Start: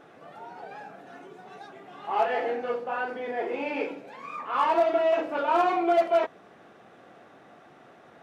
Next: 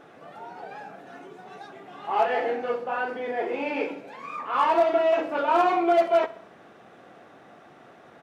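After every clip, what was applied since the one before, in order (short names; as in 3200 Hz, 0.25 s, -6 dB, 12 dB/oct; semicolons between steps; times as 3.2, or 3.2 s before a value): feedback echo 64 ms, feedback 53%, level -19 dB; gain +2 dB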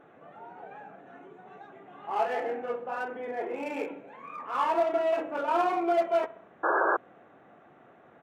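Wiener smoothing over 9 samples; painted sound noise, 6.63–6.97, 310–1700 Hz -20 dBFS; gain -5 dB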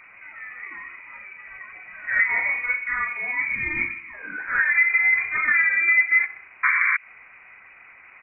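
treble ducked by the level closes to 880 Hz, closed at -22.5 dBFS; inverted band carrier 2700 Hz; spectral gain 3.35–4.14, 350–860 Hz -15 dB; gain +8 dB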